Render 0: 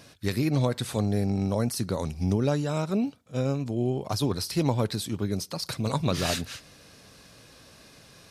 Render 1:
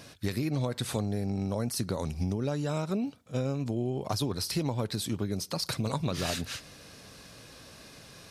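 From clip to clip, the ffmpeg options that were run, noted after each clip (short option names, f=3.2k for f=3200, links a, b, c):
-af "acompressor=threshold=-29dB:ratio=6,volume=2dB"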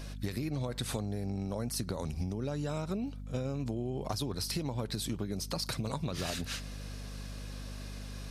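-af "aeval=exprs='val(0)+0.00891*(sin(2*PI*50*n/s)+sin(2*PI*2*50*n/s)/2+sin(2*PI*3*50*n/s)/3+sin(2*PI*4*50*n/s)/4+sin(2*PI*5*50*n/s)/5)':c=same,acompressor=threshold=-31dB:ratio=6"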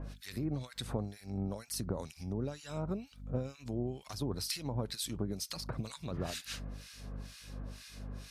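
-filter_complex "[0:a]acrossover=split=1400[a][b];[a]aeval=exprs='val(0)*(1-1/2+1/2*cos(2*PI*2.1*n/s))':c=same[c];[b]aeval=exprs='val(0)*(1-1/2-1/2*cos(2*PI*2.1*n/s))':c=same[d];[c][d]amix=inputs=2:normalize=0,volume=1dB"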